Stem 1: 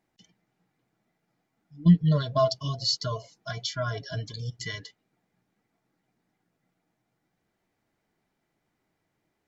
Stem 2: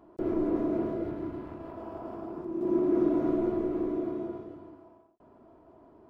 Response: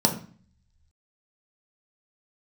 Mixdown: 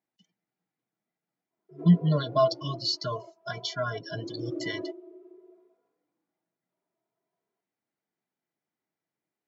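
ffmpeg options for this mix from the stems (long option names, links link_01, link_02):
-filter_complex "[0:a]volume=1dB,asplit=2[link_01][link_02];[1:a]highpass=frequency=350:width=0.5412,highpass=frequency=350:width=1.3066,highshelf=frequency=3200:gain=8,asplit=2[link_03][link_04];[link_04]adelay=2.6,afreqshift=0.53[link_05];[link_03][link_05]amix=inputs=2:normalize=1,adelay=1500,volume=-3.5dB[link_06];[link_02]apad=whole_len=335254[link_07];[link_06][link_07]sidechaingate=range=-11dB:threshold=-45dB:ratio=16:detection=peak[link_08];[link_01][link_08]amix=inputs=2:normalize=0,afftdn=noise_reduction=14:noise_floor=-41,acrossover=split=4800[link_09][link_10];[link_10]acompressor=threshold=-40dB:ratio=4:attack=1:release=60[link_11];[link_09][link_11]amix=inputs=2:normalize=0,highpass=160"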